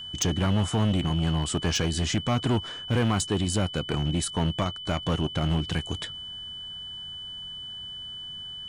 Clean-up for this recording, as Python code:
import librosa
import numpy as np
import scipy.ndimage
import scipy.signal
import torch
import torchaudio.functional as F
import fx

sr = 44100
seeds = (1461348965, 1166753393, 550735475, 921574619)

y = fx.fix_declip(x, sr, threshold_db=-19.0)
y = fx.notch(y, sr, hz=3000.0, q=30.0)